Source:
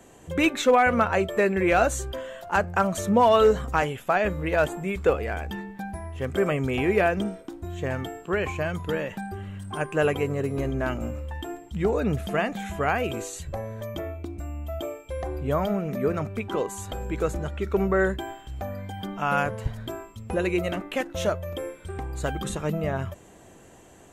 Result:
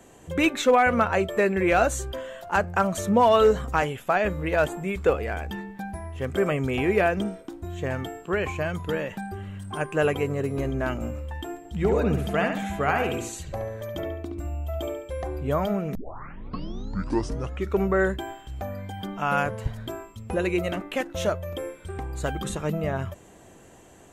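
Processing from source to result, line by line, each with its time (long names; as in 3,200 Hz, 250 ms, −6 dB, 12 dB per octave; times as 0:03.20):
0:11.58–0:15.14: delay with a low-pass on its return 70 ms, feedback 37%, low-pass 3,700 Hz, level −5 dB
0:15.95: tape start 1.74 s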